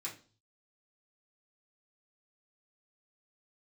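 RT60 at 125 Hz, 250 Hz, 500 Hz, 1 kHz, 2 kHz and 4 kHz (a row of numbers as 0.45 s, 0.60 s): 0.80 s, 0.45 s, 0.40 s, 0.35 s, 0.30 s, 0.40 s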